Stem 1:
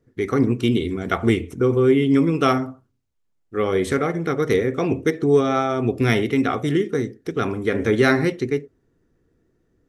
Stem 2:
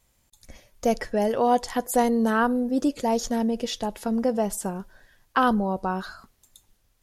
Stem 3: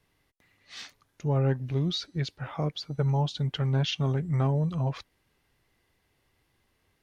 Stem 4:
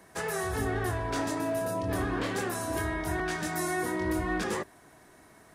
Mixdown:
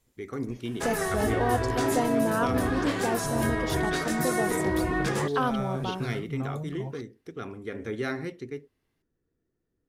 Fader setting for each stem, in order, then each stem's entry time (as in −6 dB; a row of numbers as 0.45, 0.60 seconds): −14.5, −6.5, −9.0, +2.5 decibels; 0.00, 0.00, 2.00, 0.65 seconds